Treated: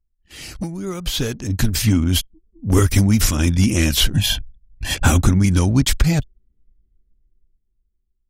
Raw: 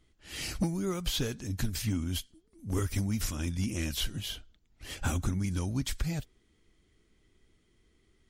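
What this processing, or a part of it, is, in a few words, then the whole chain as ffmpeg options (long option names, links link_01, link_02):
voice memo with heavy noise removal: -filter_complex "[0:a]asettb=1/sr,asplit=3[link_01][link_02][link_03];[link_01]atrim=end=4.134[link_04];[link_02]atrim=start=4.13:end=4.95,asetpts=PTS-STARTPTS,afade=type=in:duration=0.004:curve=qsin,afade=type=out:start_time=0.816:duration=0.004:curve=qsin,aecho=1:1:1.2:0.84,atrim=end_sample=36162[link_05];[link_03]atrim=start=4.946[link_06];[link_04][link_05]acrossfade=duration=0.004:curve1=hsin:curve2=qsin[link_07];[link_07][link_06]acrossfade=duration=0.004:curve1=qsin:curve2=hsin,anlmdn=0.0398,dynaudnorm=framelen=310:gausssize=9:maxgain=15.5dB,volume=1dB"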